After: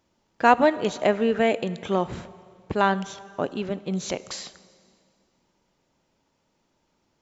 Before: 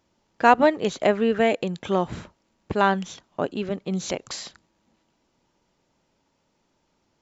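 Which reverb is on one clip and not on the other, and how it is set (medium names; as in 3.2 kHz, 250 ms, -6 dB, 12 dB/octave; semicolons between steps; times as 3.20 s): plate-style reverb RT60 2.2 s, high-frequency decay 0.9×, DRR 16 dB; trim -1 dB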